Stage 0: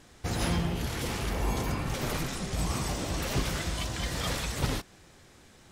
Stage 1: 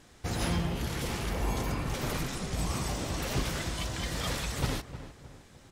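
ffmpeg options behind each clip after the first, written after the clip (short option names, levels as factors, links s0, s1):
-filter_complex "[0:a]asplit=2[s0][s1];[s1]adelay=308,lowpass=f=1700:p=1,volume=0.251,asplit=2[s2][s3];[s3]adelay=308,lowpass=f=1700:p=1,volume=0.44,asplit=2[s4][s5];[s5]adelay=308,lowpass=f=1700:p=1,volume=0.44,asplit=2[s6][s7];[s7]adelay=308,lowpass=f=1700:p=1,volume=0.44[s8];[s0][s2][s4][s6][s8]amix=inputs=5:normalize=0,volume=0.841"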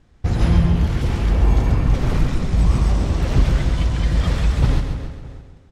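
-af "agate=range=0.316:threshold=0.00316:ratio=16:detection=peak,aemphasis=mode=reproduction:type=bsi,aecho=1:1:135|270|405|540|675|810:0.447|0.214|0.103|0.0494|0.0237|0.0114,volume=1.78"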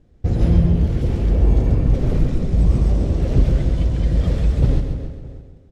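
-af "lowshelf=f=720:t=q:w=1.5:g=8.5,volume=0.398"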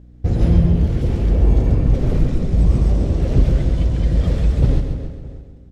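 -af "aeval=exprs='val(0)+0.00708*(sin(2*PI*60*n/s)+sin(2*PI*2*60*n/s)/2+sin(2*PI*3*60*n/s)/3+sin(2*PI*4*60*n/s)/4+sin(2*PI*5*60*n/s)/5)':c=same,volume=1.12"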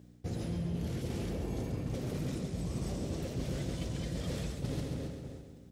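-af "crystalizer=i=3.5:c=0,highpass=120,areverse,acompressor=threshold=0.0447:ratio=6,areverse,volume=0.501"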